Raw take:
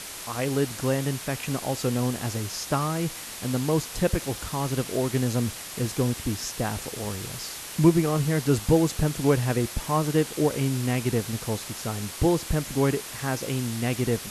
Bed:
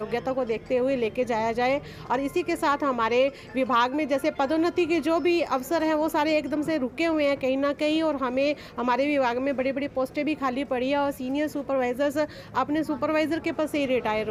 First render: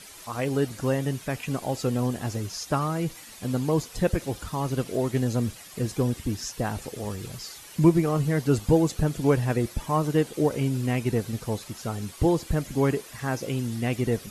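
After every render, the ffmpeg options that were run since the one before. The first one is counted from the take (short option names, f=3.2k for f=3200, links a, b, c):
-af "afftdn=nr=11:nf=-38"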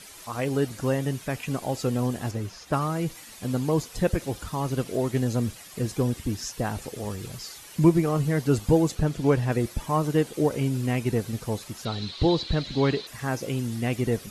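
-filter_complex "[0:a]asettb=1/sr,asplit=3[a][b][c];[a]atrim=end=2.314[d];[b]atrim=start=2.31:end=2.73,asetpts=PTS-STARTPTS,afade=t=in:d=0.004:c=qsin,afade=t=out:st=0.416:d=0.004:c=qsin,acrossover=split=3300[e][f];[f]acompressor=threshold=-49dB:ratio=4:attack=1:release=60[g];[e][g]amix=inputs=2:normalize=0[h];[c]atrim=start=2.726[i];[d][h]acrossfade=d=0.004:c1=hsin:c2=qsin[j];[j][i]acrossfade=d=0.004:c1=qsin:c2=hsin,asettb=1/sr,asplit=3[k][l][m];[k]atrim=end=8.954[n];[l]atrim=start=8.95:end=9.52,asetpts=PTS-STARTPTS,afade=t=in:d=0.004:c=qsin,afade=t=out:st=0.566:d=0.004:c=qsin,acrossover=split=6400[o][p];[p]acompressor=threshold=-52dB:ratio=4:attack=1:release=60[q];[o][q]amix=inputs=2:normalize=0[r];[m]atrim=start=9.516[s];[n][r]acrossfade=d=0.004:c1=hsin:c2=qsin[t];[t][s]acrossfade=d=0.004:c1=qsin:c2=hsin,asettb=1/sr,asplit=3[u][v][w];[u]atrim=end=11.854[x];[v]atrim=start=11.85:end=13.07,asetpts=PTS-STARTPTS,afade=t=in:d=0.004:c=qsin,afade=t=out:st=1.216:d=0.004:c=qsin,lowpass=f=4k:t=q:w=9[y];[w]atrim=start=13.066[z];[x][y]acrossfade=d=0.004:c1=hsin:c2=qsin[aa];[aa][z]acrossfade=d=0.004:c1=qsin:c2=hsin"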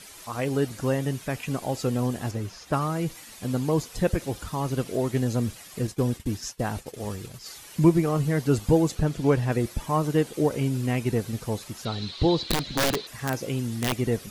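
-filter_complex "[0:a]asettb=1/sr,asplit=3[a][b][c];[a]atrim=end=5.874[d];[b]atrim=start=5.87:end=7.46,asetpts=PTS-STARTPTS,afade=t=in:d=0.004:c=qsin,afade=t=out:st=1.586:d=0.004:c=qsin,agate=range=-33dB:threshold=-34dB:ratio=3:release=100:detection=peak[e];[c]atrim=start=7.456[f];[d][e]acrossfade=d=0.004:c1=hsin:c2=qsin[g];[g][f]acrossfade=d=0.004:c1=qsin:c2=hsin,asplit=3[h][i][j];[h]afade=t=out:st=12.47:d=0.02[k];[i]aeval=exprs='(mod(7.5*val(0)+1,2)-1)/7.5':c=same,afade=t=in:st=12.47:d=0.02,afade=t=out:st=13.92:d=0.02[l];[j]afade=t=in:st=13.92:d=0.02[m];[k][l][m]amix=inputs=3:normalize=0"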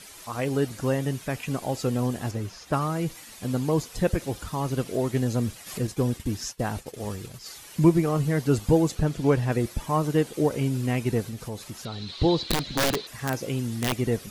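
-filter_complex "[0:a]asplit=3[a][b][c];[a]afade=t=out:st=5.66:d=0.02[d];[b]acompressor=mode=upward:threshold=-28dB:ratio=2.5:attack=3.2:release=140:knee=2.83:detection=peak,afade=t=in:st=5.66:d=0.02,afade=t=out:st=6.51:d=0.02[e];[c]afade=t=in:st=6.51:d=0.02[f];[d][e][f]amix=inputs=3:normalize=0,asettb=1/sr,asplit=3[g][h][i];[g]atrim=end=11.274[j];[h]atrim=start=11.27:end=12.1,asetpts=PTS-STARTPTS,afade=t=in:d=0.004:c=qsin,afade=t=out:st=0.826:d=0.004:c=qsin,acompressor=threshold=-32dB:ratio=2.5:attack=3.2:release=140:knee=1:detection=peak[k];[i]atrim=start=12.096[l];[j][k]acrossfade=d=0.004:c1=hsin:c2=qsin[m];[m][l]acrossfade=d=0.004:c1=qsin:c2=hsin"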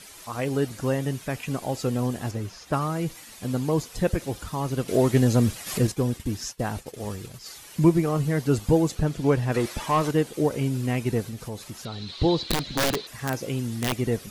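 -filter_complex "[0:a]asettb=1/sr,asplit=3[a][b][c];[a]atrim=end=4.884[d];[b]atrim=start=4.88:end=5.92,asetpts=PTS-STARTPTS,afade=t=in:d=0.004:c=qsin,afade=t=out:st=1.036:d=0.004:c=qsin,acontrast=50[e];[c]atrim=start=5.916[f];[d][e]acrossfade=d=0.004:c1=hsin:c2=qsin[g];[g][f]acrossfade=d=0.004:c1=qsin:c2=hsin,asettb=1/sr,asplit=3[h][i][j];[h]atrim=end=9.544[k];[i]atrim=start=9.54:end=10.11,asetpts=PTS-STARTPTS,afade=t=in:d=0.004:c=qsin,afade=t=out:st=0.566:d=0.004:c=qsin,asplit=2[l][m];[m]highpass=f=720:p=1,volume=15dB,asoftclip=type=tanh:threshold=-13.5dB[n];[l][n]amix=inputs=2:normalize=0,lowpass=f=4.7k:p=1,volume=-6dB[o];[j]atrim=start=10.106[p];[k][o]acrossfade=d=0.004:c1=hsin:c2=qsin[q];[q][p]acrossfade=d=0.004:c1=qsin:c2=hsin"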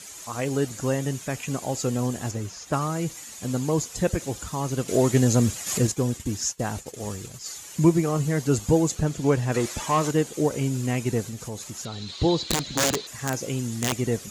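-af "highpass=44,equalizer=f=6.9k:w=3:g=12"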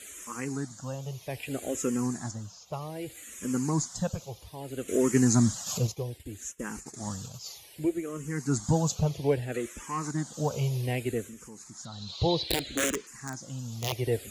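-filter_complex "[0:a]tremolo=f=0.56:d=0.63,asplit=2[a][b];[b]afreqshift=-0.63[c];[a][c]amix=inputs=2:normalize=1"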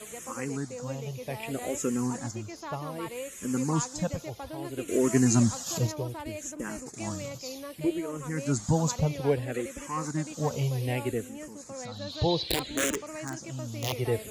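-filter_complex "[1:a]volume=-16.5dB[a];[0:a][a]amix=inputs=2:normalize=0"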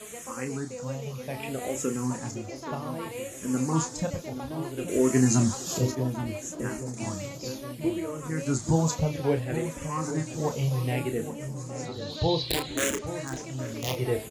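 -filter_complex "[0:a]asplit=2[a][b];[b]adelay=31,volume=-7.5dB[c];[a][c]amix=inputs=2:normalize=0,asplit=2[d][e];[e]adelay=826,lowpass=f=980:p=1,volume=-10dB,asplit=2[f][g];[g]adelay=826,lowpass=f=980:p=1,volume=0.54,asplit=2[h][i];[i]adelay=826,lowpass=f=980:p=1,volume=0.54,asplit=2[j][k];[k]adelay=826,lowpass=f=980:p=1,volume=0.54,asplit=2[l][m];[m]adelay=826,lowpass=f=980:p=1,volume=0.54,asplit=2[n][o];[o]adelay=826,lowpass=f=980:p=1,volume=0.54[p];[f][h][j][l][n][p]amix=inputs=6:normalize=0[q];[d][q]amix=inputs=2:normalize=0"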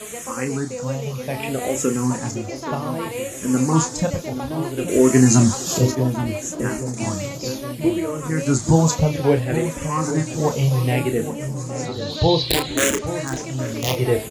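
-af "volume=8.5dB,alimiter=limit=-2dB:level=0:latency=1"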